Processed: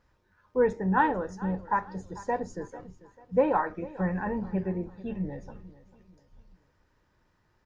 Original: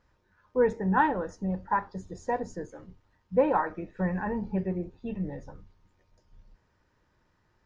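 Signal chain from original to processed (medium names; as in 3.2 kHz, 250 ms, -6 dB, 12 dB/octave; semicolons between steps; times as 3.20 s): feedback delay 443 ms, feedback 37%, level -18 dB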